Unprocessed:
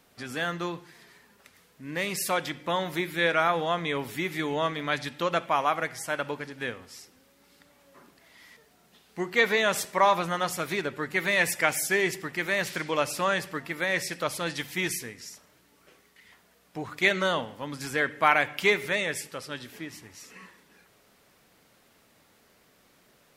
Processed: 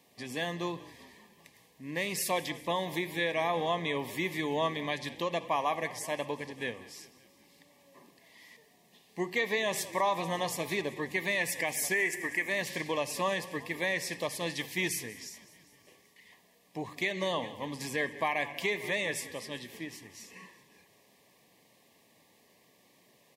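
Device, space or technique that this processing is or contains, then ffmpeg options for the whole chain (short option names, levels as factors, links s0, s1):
PA system with an anti-feedback notch: -filter_complex "[0:a]asplit=3[s0][s1][s2];[s0]afade=t=out:st=11.93:d=0.02[s3];[s1]equalizer=f=125:t=o:w=1:g=-11,equalizer=f=2000:t=o:w=1:g=10,equalizer=f=4000:t=o:w=1:g=-12,equalizer=f=8000:t=o:w=1:g=8,afade=t=in:st=11.93:d=0.02,afade=t=out:st=12.48:d=0.02[s4];[s2]afade=t=in:st=12.48:d=0.02[s5];[s3][s4][s5]amix=inputs=3:normalize=0,asplit=7[s6][s7][s8][s9][s10][s11][s12];[s7]adelay=191,afreqshift=-47,volume=0.112[s13];[s8]adelay=382,afreqshift=-94,volume=0.0692[s14];[s9]adelay=573,afreqshift=-141,volume=0.0432[s15];[s10]adelay=764,afreqshift=-188,volume=0.0266[s16];[s11]adelay=955,afreqshift=-235,volume=0.0166[s17];[s12]adelay=1146,afreqshift=-282,volume=0.0102[s18];[s6][s13][s14][s15][s16][s17][s18]amix=inputs=7:normalize=0,highpass=110,asuperstop=centerf=1400:order=8:qfactor=2.8,alimiter=limit=0.133:level=0:latency=1:release=197,volume=0.794"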